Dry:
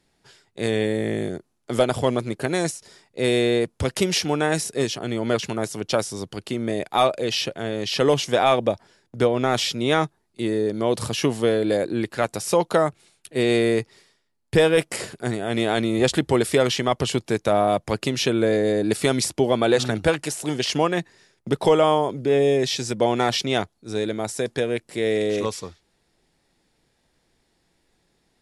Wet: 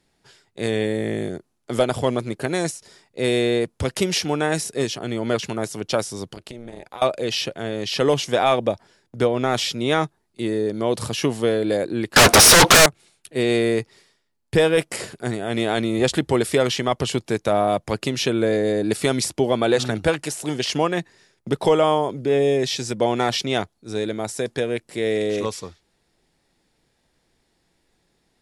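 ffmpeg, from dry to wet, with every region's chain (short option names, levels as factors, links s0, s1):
-filter_complex "[0:a]asettb=1/sr,asplit=3[s0][s1][s2];[s0]atrim=end=6.344[s3];[s1]atrim=start=6.34:end=7.02,asetpts=PTS-STARTPTS,afade=t=in:d=0.004:c=qsin,afade=t=out:st=0.676:d=0.004:c=qsin,tremolo=f=240:d=0.919,acompressor=threshold=0.0282:ratio=10:attack=3.2:release=140:knee=1:detection=peak[s4];[s2]atrim=start=7.016[s5];[s3][s4]acrossfade=d=0.004:c1=hsin:c2=qsin[s6];[s6][s5]acrossfade=d=0.004:c1=qsin:c2=hsin,asettb=1/sr,asplit=3[s7][s8][s9];[s7]atrim=end=12.164[s10];[s8]atrim=start=12.16:end=12.86,asetpts=PTS-STARTPTS,afade=t=in:d=0.004:c=qsin,afade=t=out:st=0.696:d=0.004:c=qsin,bandreject=f=7400:w=5.4,asplit=2[s11][s12];[s12]highpass=f=720:p=1,volume=28.2,asoftclip=type=tanh:threshold=0.473[s13];[s11][s13]amix=inputs=2:normalize=0,lowpass=f=1900:p=1,volume=0.501,aeval=exprs='0.447*sin(PI/2*5.62*val(0)/0.447)':c=same[s14];[s9]atrim=start=12.856[s15];[s10][s14]acrossfade=d=0.004:c1=hsin:c2=qsin[s16];[s16][s15]acrossfade=d=0.004:c1=qsin:c2=hsin"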